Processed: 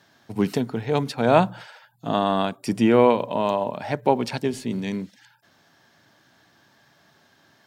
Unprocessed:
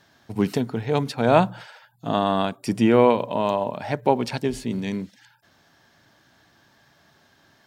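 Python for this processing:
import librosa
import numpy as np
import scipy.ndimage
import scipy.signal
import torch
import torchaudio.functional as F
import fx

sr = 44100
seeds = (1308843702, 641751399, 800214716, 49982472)

y = scipy.signal.sosfilt(scipy.signal.butter(2, 100.0, 'highpass', fs=sr, output='sos'), x)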